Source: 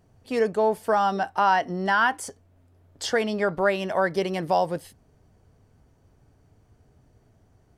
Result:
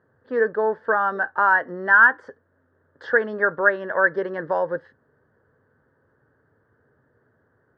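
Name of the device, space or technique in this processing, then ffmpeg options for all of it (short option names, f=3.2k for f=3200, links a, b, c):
kitchen radio: -af "highpass=170,equalizer=f=190:t=q:w=4:g=-7,equalizer=f=300:t=q:w=4:g=-3,equalizer=f=510:t=q:w=4:g=6,equalizer=f=720:t=q:w=4:g=-10,equalizer=f=1.7k:t=q:w=4:g=9,equalizer=f=2.4k:t=q:w=4:g=-8,lowpass=f=3.5k:w=0.5412,lowpass=f=3.5k:w=1.3066,highshelf=f=2k:t=q:w=3:g=-8"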